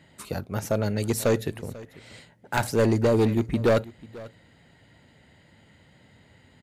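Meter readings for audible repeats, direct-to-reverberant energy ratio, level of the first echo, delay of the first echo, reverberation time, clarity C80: 1, no reverb, -20.0 dB, 492 ms, no reverb, no reverb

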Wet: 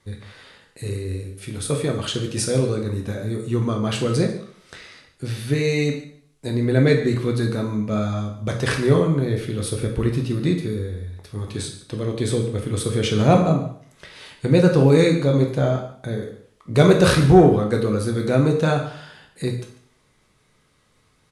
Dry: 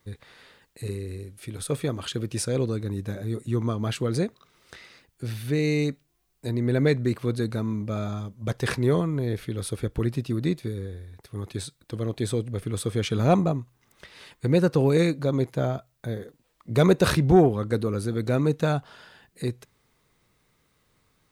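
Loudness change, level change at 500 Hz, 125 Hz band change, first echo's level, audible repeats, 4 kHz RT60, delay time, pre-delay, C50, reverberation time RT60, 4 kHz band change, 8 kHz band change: +5.5 dB, +5.5 dB, +5.5 dB, -16.5 dB, 1, 0.55 s, 144 ms, 5 ms, 7.0 dB, 0.55 s, +6.5 dB, +6.0 dB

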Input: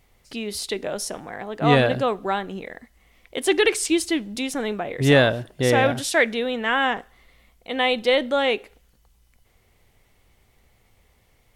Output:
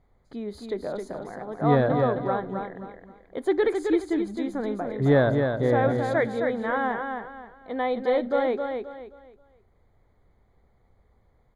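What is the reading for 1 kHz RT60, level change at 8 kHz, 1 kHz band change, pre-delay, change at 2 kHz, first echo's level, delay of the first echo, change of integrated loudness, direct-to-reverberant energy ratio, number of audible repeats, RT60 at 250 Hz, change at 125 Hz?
no reverb, under -20 dB, -3.0 dB, no reverb, -9.0 dB, -5.5 dB, 265 ms, -4.0 dB, no reverb, 3, no reverb, -1.5 dB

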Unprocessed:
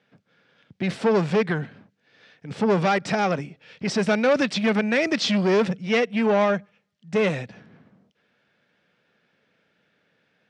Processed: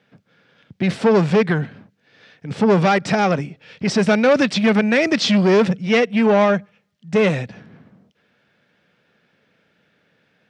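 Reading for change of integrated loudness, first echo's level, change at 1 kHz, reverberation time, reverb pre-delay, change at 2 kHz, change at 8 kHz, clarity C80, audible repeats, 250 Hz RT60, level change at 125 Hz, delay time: +5.5 dB, no echo, +4.5 dB, no reverb, no reverb, +4.5 dB, +4.5 dB, no reverb, no echo, no reverb, +7.0 dB, no echo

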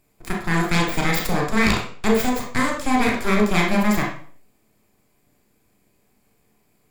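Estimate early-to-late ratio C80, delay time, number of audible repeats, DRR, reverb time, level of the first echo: 9.5 dB, no echo, no echo, -1.0 dB, 0.50 s, no echo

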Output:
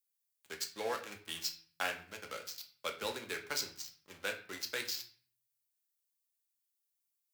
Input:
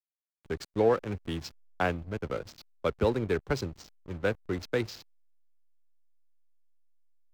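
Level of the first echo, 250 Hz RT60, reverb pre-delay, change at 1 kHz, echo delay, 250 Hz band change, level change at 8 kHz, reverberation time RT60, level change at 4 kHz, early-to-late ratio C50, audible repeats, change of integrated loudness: no echo, 0.60 s, 4 ms, -8.0 dB, no echo, -19.0 dB, +8.0 dB, 0.45 s, +4.5 dB, 11.5 dB, no echo, -8.0 dB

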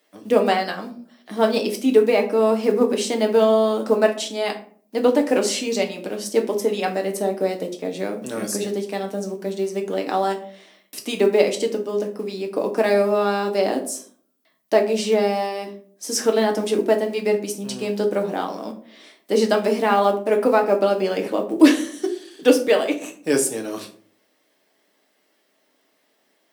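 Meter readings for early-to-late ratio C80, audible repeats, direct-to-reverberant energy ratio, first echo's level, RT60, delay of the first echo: 15.5 dB, no echo, 2.0 dB, no echo, 0.50 s, no echo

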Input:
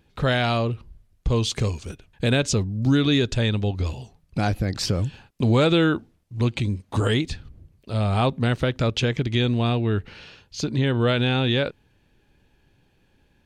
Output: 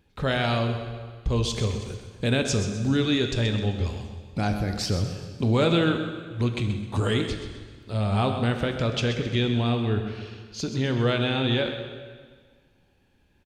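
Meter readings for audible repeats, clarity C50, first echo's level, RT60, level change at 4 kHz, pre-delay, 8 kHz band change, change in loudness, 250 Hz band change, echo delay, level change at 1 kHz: 2, 6.0 dB, -10.5 dB, 1.6 s, -2.0 dB, 4 ms, -2.5 dB, -2.5 dB, -2.5 dB, 129 ms, -2.5 dB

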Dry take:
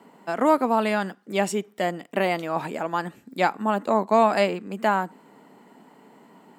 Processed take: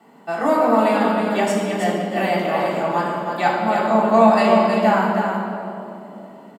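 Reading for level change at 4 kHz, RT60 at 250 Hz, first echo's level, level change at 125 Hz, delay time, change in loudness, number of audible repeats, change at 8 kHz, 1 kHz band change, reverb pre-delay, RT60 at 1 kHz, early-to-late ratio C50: +4.5 dB, 3.7 s, -5.0 dB, +7.0 dB, 319 ms, +6.0 dB, 1, +2.5 dB, +6.0 dB, 3 ms, 2.5 s, -1.0 dB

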